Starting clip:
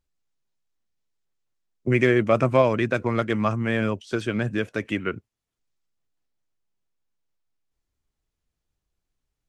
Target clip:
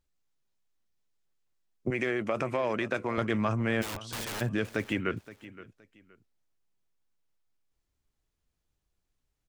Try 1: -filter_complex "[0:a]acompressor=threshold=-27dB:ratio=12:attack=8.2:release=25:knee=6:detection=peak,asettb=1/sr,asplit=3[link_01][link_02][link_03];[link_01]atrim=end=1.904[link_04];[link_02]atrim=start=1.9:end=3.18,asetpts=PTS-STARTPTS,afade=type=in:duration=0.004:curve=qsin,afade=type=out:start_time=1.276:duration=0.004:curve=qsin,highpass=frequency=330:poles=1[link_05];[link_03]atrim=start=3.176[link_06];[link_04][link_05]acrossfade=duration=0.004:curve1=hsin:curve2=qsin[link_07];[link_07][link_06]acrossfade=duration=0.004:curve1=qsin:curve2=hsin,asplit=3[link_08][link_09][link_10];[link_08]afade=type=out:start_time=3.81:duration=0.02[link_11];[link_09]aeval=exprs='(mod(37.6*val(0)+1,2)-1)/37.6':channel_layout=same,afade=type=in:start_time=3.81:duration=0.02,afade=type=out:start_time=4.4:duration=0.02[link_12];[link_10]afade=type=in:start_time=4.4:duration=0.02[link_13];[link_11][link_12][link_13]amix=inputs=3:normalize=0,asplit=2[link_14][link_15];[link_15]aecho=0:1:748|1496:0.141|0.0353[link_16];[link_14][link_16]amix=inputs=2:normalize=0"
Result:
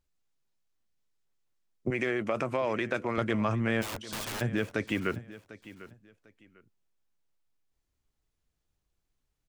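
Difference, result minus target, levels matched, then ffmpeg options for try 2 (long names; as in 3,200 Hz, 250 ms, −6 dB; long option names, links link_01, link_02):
echo 228 ms late
-filter_complex "[0:a]acompressor=threshold=-27dB:ratio=12:attack=8.2:release=25:knee=6:detection=peak,asettb=1/sr,asplit=3[link_01][link_02][link_03];[link_01]atrim=end=1.904[link_04];[link_02]atrim=start=1.9:end=3.18,asetpts=PTS-STARTPTS,afade=type=in:duration=0.004:curve=qsin,afade=type=out:start_time=1.276:duration=0.004:curve=qsin,highpass=frequency=330:poles=1[link_05];[link_03]atrim=start=3.176[link_06];[link_04][link_05]acrossfade=duration=0.004:curve1=hsin:curve2=qsin[link_07];[link_07][link_06]acrossfade=duration=0.004:curve1=qsin:curve2=hsin,asplit=3[link_08][link_09][link_10];[link_08]afade=type=out:start_time=3.81:duration=0.02[link_11];[link_09]aeval=exprs='(mod(37.6*val(0)+1,2)-1)/37.6':channel_layout=same,afade=type=in:start_time=3.81:duration=0.02,afade=type=out:start_time=4.4:duration=0.02[link_12];[link_10]afade=type=in:start_time=4.4:duration=0.02[link_13];[link_11][link_12][link_13]amix=inputs=3:normalize=0,asplit=2[link_14][link_15];[link_15]aecho=0:1:520|1040:0.141|0.0353[link_16];[link_14][link_16]amix=inputs=2:normalize=0"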